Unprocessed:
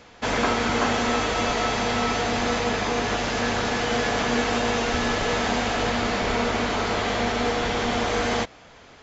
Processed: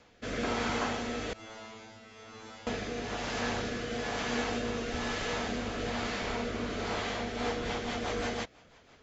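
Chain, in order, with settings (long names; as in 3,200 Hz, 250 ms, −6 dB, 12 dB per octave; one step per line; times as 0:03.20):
rotating-speaker cabinet horn 1.1 Hz, later 6 Hz, at 0:07.01
0:01.33–0:02.67: tuned comb filter 110 Hz, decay 0.7 s, harmonics all, mix 100%
level −7.5 dB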